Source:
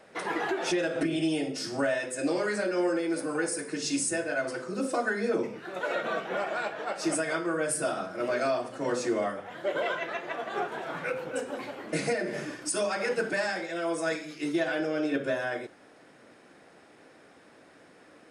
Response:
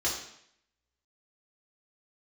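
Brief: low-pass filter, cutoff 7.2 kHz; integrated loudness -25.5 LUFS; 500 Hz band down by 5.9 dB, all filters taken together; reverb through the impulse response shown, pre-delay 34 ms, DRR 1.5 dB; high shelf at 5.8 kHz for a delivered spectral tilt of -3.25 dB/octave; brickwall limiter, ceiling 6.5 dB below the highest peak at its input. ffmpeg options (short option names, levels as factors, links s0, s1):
-filter_complex "[0:a]lowpass=7200,equalizer=f=500:t=o:g=-8,highshelf=f=5800:g=4.5,alimiter=level_in=1.19:limit=0.0631:level=0:latency=1,volume=0.841,asplit=2[s0][s1];[1:a]atrim=start_sample=2205,adelay=34[s2];[s1][s2]afir=irnorm=-1:irlink=0,volume=0.335[s3];[s0][s3]amix=inputs=2:normalize=0,volume=2.11"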